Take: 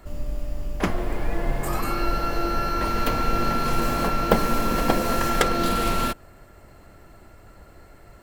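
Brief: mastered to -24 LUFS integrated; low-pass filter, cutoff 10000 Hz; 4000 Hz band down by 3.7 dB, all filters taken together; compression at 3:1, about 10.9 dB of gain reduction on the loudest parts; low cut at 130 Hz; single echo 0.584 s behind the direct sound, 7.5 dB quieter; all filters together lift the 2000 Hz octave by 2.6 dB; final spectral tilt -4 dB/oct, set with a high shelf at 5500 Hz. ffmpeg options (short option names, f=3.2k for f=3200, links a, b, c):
-af "highpass=130,lowpass=10k,equalizer=f=2k:t=o:g=5,equalizer=f=4k:t=o:g=-3,highshelf=f=5.5k:g=-8.5,acompressor=threshold=-30dB:ratio=3,aecho=1:1:584:0.422,volume=6dB"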